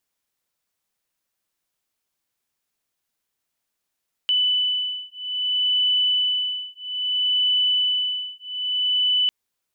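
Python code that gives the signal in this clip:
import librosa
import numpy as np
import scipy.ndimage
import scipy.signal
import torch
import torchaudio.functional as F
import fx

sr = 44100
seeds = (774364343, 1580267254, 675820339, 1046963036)

y = fx.two_tone_beats(sr, length_s=5.0, hz=2990.0, beat_hz=0.61, level_db=-22.5)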